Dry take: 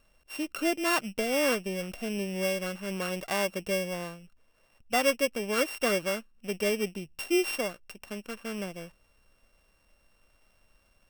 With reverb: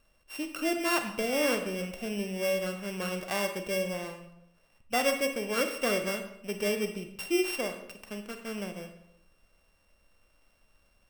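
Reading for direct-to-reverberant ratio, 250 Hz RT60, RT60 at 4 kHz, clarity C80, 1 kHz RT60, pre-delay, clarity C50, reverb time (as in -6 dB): 6.5 dB, 0.85 s, 0.60 s, 10.5 dB, 0.80 s, 29 ms, 8.5 dB, 0.85 s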